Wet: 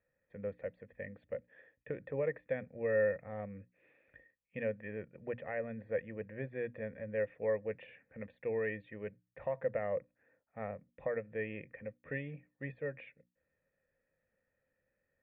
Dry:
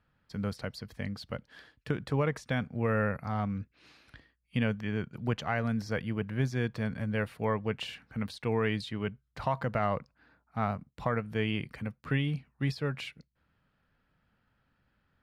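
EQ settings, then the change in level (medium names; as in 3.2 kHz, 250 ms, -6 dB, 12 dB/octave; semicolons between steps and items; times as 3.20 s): cascade formant filter e; hum notches 60/120 Hz; hum notches 60/120/180/240/300 Hz; +5.5 dB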